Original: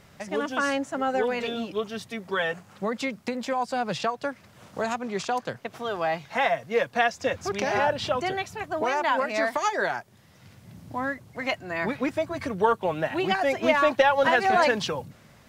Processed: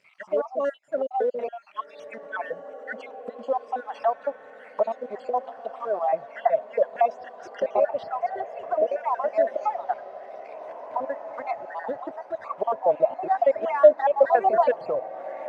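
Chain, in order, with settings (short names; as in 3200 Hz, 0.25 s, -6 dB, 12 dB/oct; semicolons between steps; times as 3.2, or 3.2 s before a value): random spectral dropouts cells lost 60%; in parallel at -6 dB: companded quantiser 4-bit; on the sum: auto-wah 630–2500 Hz, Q 4.8, down, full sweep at -27.5 dBFS; diffused feedback echo 1.926 s, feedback 46%, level -13 dB; gain +8.5 dB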